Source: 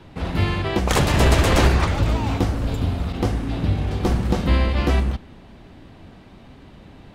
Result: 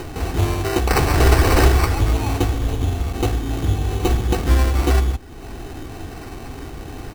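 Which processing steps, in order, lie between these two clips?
upward compressor, threshold -22 dBFS; comb 2.6 ms, depth 62%; sample-and-hold 13×

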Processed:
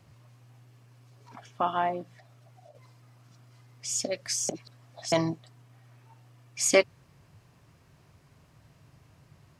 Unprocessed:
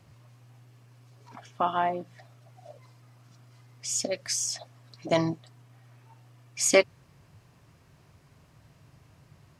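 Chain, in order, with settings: 2.12–2.75 compressor 6:1, threshold -50 dBFS, peak gain reduction 8 dB; 4.49–5.12 reverse; gain -1 dB

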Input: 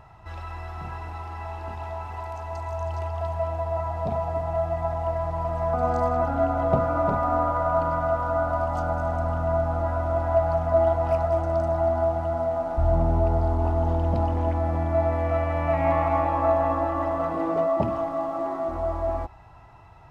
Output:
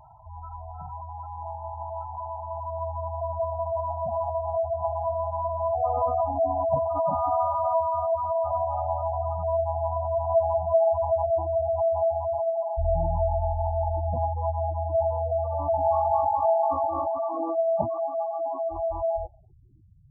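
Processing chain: low-pass sweep 940 Hz -> 280 Hz, 19.01–19.79; spectral gate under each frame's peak -10 dB strong; gain -4.5 dB

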